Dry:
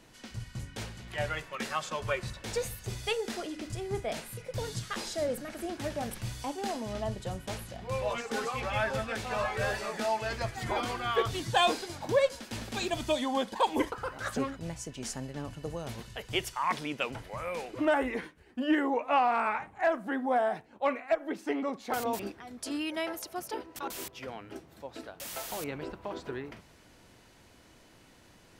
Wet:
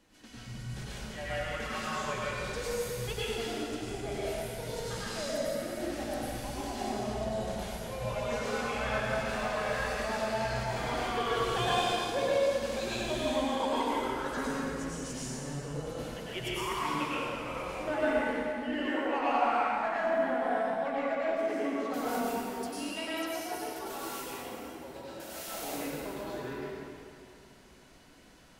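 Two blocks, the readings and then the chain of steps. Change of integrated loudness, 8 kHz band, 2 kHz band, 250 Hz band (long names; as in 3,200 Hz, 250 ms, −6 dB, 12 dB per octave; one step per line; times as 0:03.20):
0.0 dB, 0.0 dB, 0.0 dB, −0.5 dB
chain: flanger 0.82 Hz, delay 3.6 ms, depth 1.9 ms, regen −39%
in parallel at −5 dB: soft clipping −32.5 dBFS, distortion −8 dB
on the sum: dense smooth reverb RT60 2.5 s, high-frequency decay 0.85×, pre-delay 85 ms, DRR −9 dB
level −8.5 dB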